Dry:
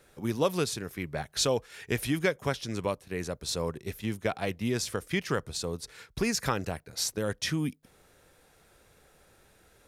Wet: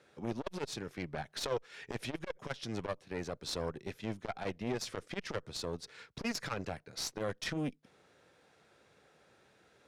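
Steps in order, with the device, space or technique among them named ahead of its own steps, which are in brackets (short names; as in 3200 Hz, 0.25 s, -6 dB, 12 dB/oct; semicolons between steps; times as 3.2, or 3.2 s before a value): valve radio (BPF 130–5400 Hz; tube stage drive 26 dB, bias 0.75; core saturation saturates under 430 Hz); gain +1.5 dB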